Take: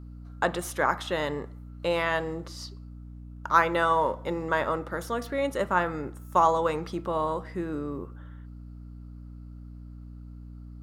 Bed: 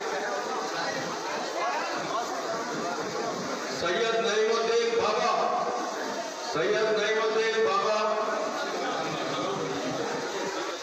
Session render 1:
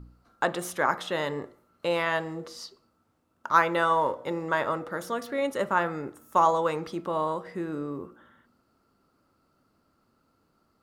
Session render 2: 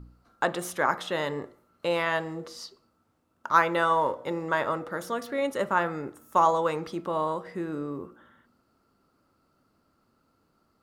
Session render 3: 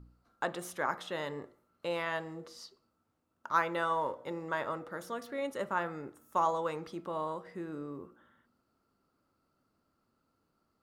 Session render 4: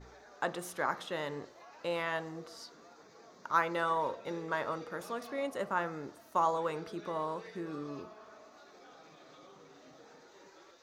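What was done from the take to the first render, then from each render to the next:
de-hum 60 Hz, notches 12
nothing audible
gain -8 dB
add bed -26 dB

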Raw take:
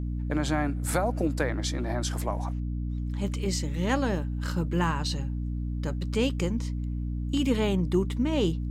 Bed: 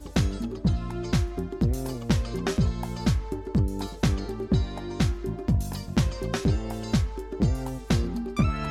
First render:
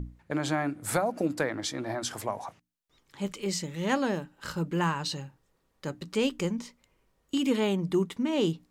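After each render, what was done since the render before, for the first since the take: notches 60/120/180/240/300 Hz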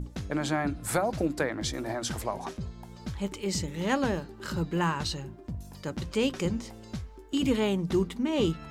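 add bed -13.5 dB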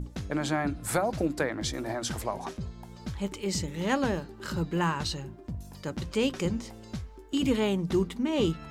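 nothing audible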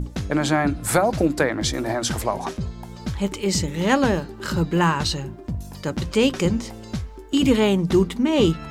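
gain +8.5 dB

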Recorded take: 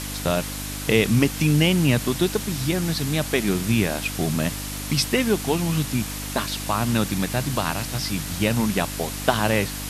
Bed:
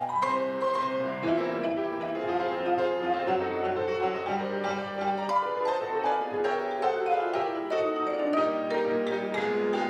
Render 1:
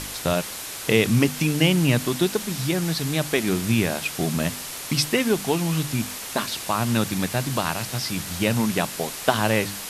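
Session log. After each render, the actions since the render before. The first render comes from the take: de-hum 50 Hz, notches 6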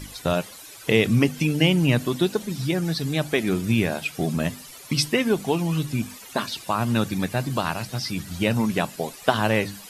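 denoiser 14 dB, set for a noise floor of -34 dBFS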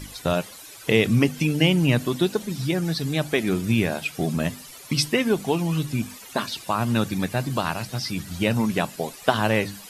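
nothing audible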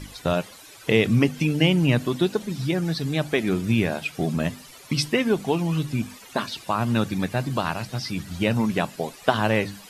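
high shelf 6700 Hz -7.5 dB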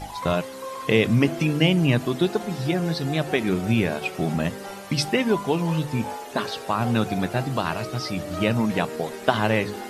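add bed -7 dB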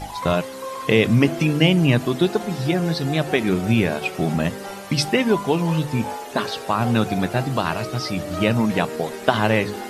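gain +3 dB; limiter -2 dBFS, peak gain reduction 1.5 dB

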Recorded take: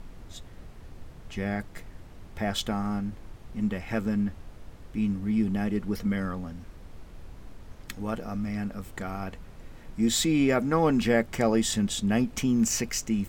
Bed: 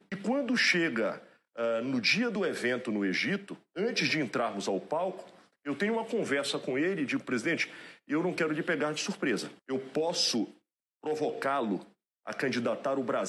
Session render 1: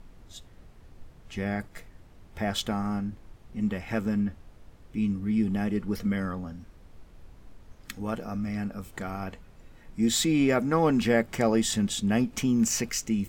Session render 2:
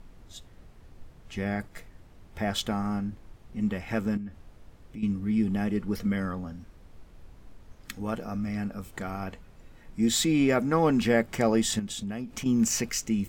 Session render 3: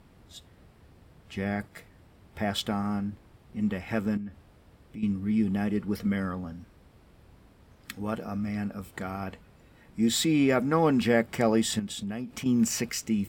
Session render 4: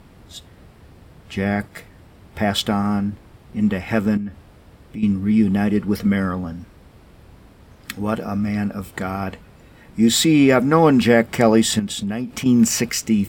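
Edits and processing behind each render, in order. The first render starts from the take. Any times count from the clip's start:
noise print and reduce 6 dB
4.17–5.03 compressor 2.5:1, threshold -39 dBFS; 11.79–12.46 compressor 4:1, threshold -32 dBFS
HPF 61 Hz; bell 6400 Hz -6.5 dB 0.27 oct
gain +9.5 dB; limiter -1 dBFS, peak gain reduction 1.5 dB

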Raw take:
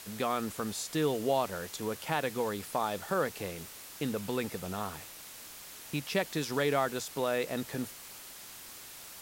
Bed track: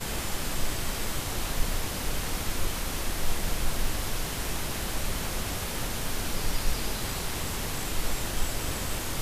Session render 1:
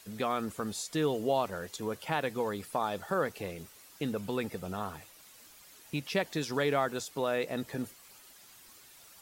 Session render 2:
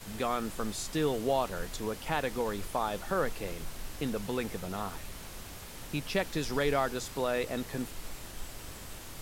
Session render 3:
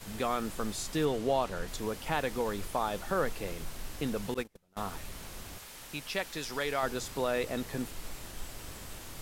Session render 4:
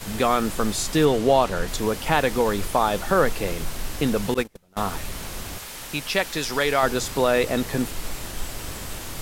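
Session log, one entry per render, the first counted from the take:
denoiser 10 dB, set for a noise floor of -48 dBFS
add bed track -13.5 dB
1.05–1.68 high shelf 11000 Hz -11.5 dB; 4.34–4.77 gate -33 dBFS, range -34 dB; 5.58–6.83 low shelf 490 Hz -10.5 dB
gain +11 dB

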